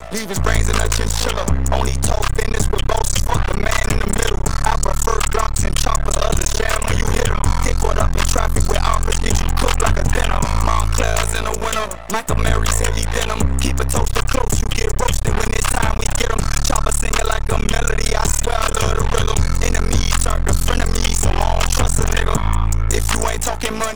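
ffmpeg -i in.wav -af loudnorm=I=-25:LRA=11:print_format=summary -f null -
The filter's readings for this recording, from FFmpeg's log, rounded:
Input Integrated:    -19.1 LUFS
Input True Peak:      -2.6 dBTP
Input LRA:             1.0 LU
Input Threshold:     -29.1 LUFS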